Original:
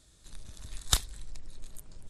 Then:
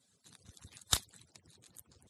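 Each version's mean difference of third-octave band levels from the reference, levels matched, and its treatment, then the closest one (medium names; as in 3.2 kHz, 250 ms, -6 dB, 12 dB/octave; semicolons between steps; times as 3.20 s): 4.0 dB: harmonic-percussive separation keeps percussive; high-pass 85 Hz; trim -3.5 dB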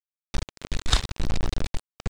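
13.0 dB: word length cut 6-bit, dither none; distance through air 110 m; loudness maximiser +14.5 dB; trim -2.5 dB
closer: first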